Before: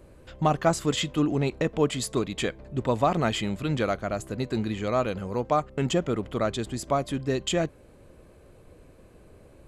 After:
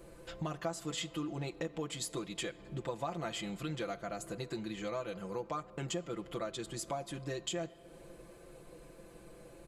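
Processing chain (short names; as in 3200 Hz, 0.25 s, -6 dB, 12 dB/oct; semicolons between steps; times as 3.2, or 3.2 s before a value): tone controls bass -5 dB, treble +4 dB; comb 5.9 ms, depth 87%; compressor 3:1, threshold -38 dBFS, peak gain reduction 18.5 dB; on a send: reverb RT60 3.1 s, pre-delay 7 ms, DRR 17 dB; on the sum: gain -2 dB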